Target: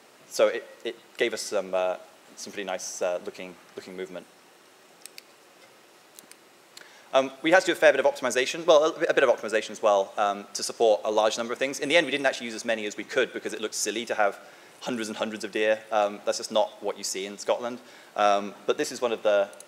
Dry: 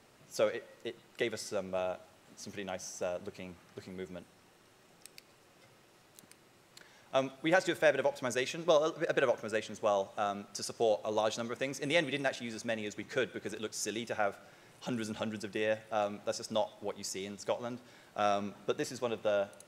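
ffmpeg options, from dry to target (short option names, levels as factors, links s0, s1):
-af "highpass=280,volume=2.82"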